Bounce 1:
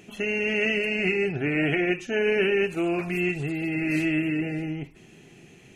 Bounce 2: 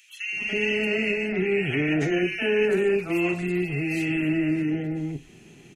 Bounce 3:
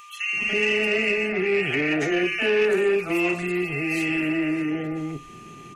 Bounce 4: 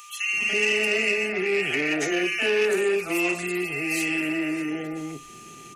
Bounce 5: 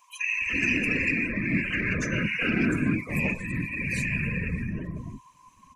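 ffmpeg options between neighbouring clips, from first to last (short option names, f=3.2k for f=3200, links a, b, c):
-filter_complex "[0:a]acrossover=split=630|1900[a][b][c];[b]adelay=290[d];[a]adelay=330[e];[e][d][c]amix=inputs=3:normalize=0,volume=2dB"
-filter_complex "[0:a]acrossover=split=340|420|3200[a][b][c][d];[a]acompressor=threshold=-37dB:ratio=6[e];[e][b][c][d]amix=inputs=4:normalize=0,aeval=exprs='val(0)+0.00398*sin(2*PI*1200*n/s)':c=same,asoftclip=type=tanh:threshold=-16.5dB,volume=4.5dB"
-filter_complex "[0:a]bass=f=250:g=-5,treble=f=4k:g=11,acrossover=split=130|2900[a][b][c];[a]alimiter=level_in=24.5dB:limit=-24dB:level=0:latency=1,volume=-24.5dB[d];[d][b][c]amix=inputs=3:normalize=0,volume=-1.5dB"
-af "afreqshift=-170,afftfilt=real='hypot(re,im)*cos(2*PI*random(0))':imag='hypot(re,im)*sin(2*PI*random(1))':win_size=512:overlap=0.75,afftdn=nr=16:nf=-38,volume=4dB"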